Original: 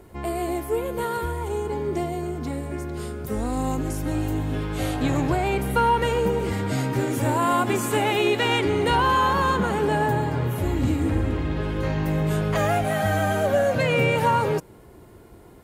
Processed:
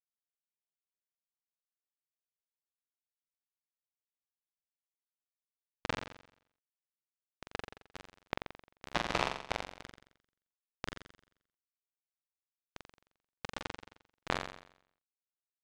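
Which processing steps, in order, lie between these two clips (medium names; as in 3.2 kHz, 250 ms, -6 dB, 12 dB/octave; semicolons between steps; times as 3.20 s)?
spectral gate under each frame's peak -25 dB weak; bass shelf 170 Hz +11 dB; band-stop 5.1 kHz, Q 7.5; in parallel at -7 dB: sample-rate reducer 2.3 kHz, jitter 0%; on the sum: high-pass sweep 100 Hz -> 720 Hz, 6.37–7.99 s; doubling 24 ms -5 dB; bit crusher 4-bit; tape spacing loss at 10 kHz 29 dB; on a send: flutter echo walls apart 7.5 m, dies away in 0.68 s; on the sum: trim +11 dB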